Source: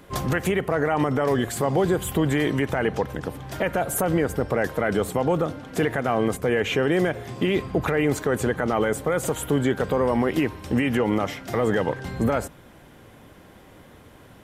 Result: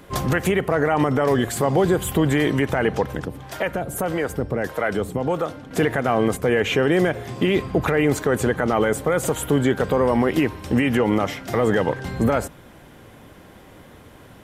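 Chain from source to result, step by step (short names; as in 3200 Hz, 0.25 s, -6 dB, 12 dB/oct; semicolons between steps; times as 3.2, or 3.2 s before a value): 3.25–5.71 harmonic tremolo 1.6 Hz, depth 70%, crossover 440 Hz; gain +3 dB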